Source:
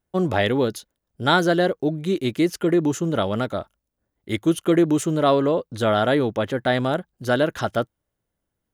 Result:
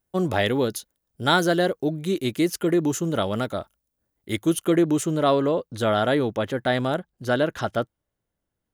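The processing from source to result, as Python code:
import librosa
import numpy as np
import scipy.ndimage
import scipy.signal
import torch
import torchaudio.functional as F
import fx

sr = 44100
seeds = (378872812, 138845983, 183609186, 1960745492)

y = fx.high_shelf(x, sr, hz=6900.0, db=fx.steps((0.0, 10.0), (4.68, 3.5), (6.97, -2.5)))
y = y * 10.0 ** (-2.0 / 20.0)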